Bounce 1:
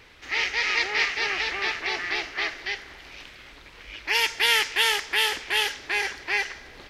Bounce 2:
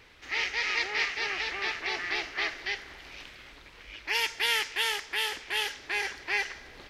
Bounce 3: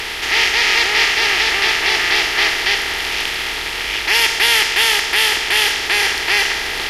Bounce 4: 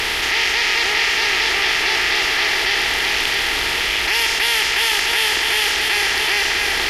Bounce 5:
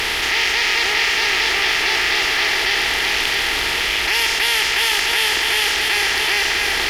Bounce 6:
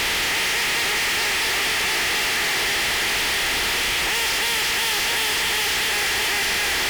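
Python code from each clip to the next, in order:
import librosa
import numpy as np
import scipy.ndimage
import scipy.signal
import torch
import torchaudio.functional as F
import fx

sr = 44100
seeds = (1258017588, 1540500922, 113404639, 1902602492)

y1 = fx.rider(x, sr, range_db=4, speed_s=2.0)
y1 = y1 * 10.0 ** (-6.0 / 20.0)
y2 = fx.bin_compress(y1, sr, power=0.4)
y2 = fx.bass_treble(y2, sr, bass_db=4, treble_db=5)
y2 = y2 * 10.0 ** (8.5 / 20.0)
y3 = y2 + 10.0 ** (-6.5 / 20.0) * np.pad(y2, (int(653 * sr / 1000.0), 0))[:len(y2)]
y3 = fx.env_flatten(y3, sr, amount_pct=70)
y3 = y3 * 10.0 ** (-5.5 / 20.0)
y4 = fx.mod_noise(y3, sr, seeds[0], snr_db=30)
y5 = fx.fuzz(y4, sr, gain_db=30.0, gate_db=-37.0)
y5 = y5 * 10.0 ** (-7.5 / 20.0)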